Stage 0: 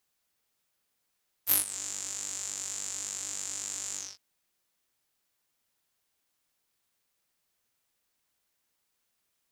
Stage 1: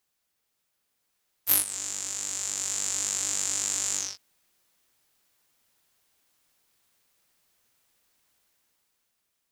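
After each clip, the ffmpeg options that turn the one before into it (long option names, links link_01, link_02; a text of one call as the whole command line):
ffmpeg -i in.wav -af "dynaudnorm=framelen=150:gausssize=13:maxgain=8dB" out.wav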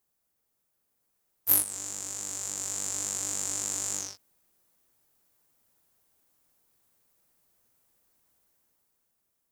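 ffmpeg -i in.wav -af "equalizer=frequency=3200:width_type=o:width=2.7:gain=-10.5,volume=2.5dB" out.wav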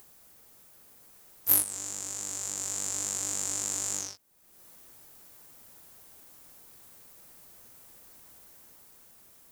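ffmpeg -i in.wav -af "acompressor=mode=upward:threshold=-38dB:ratio=2.5" out.wav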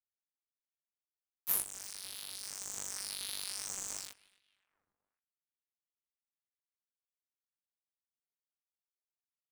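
ffmpeg -i in.wav -filter_complex "[0:a]acrusher=bits=4:mix=0:aa=0.000001,asplit=2[link_01][link_02];[link_02]adelay=270,lowpass=frequency=1800:poles=1,volume=-18dB,asplit=2[link_03][link_04];[link_04]adelay=270,lowpass=frequency=1800:poles=1,volume=0.51,asplit=2[link_05][link_06];[link_06]adelay=270,lowpass=frequency=1800:poles=1,volume=0.51,asplit=2[link_07][link_08];[link_08]adelay=270,lowpass=frequency=1800:poles=1,volume=0.51[link_09];[link_01][link_03][link_05][link_07][link_09]amix=inputs=5:normalize=0,aeval=exprs='val(0)*sin(2*PI*1900*n/s+1900*0.7/0.91*sin(2*PI*0.91*n/s))':channel_layout=same,volume=-6dB" out.wav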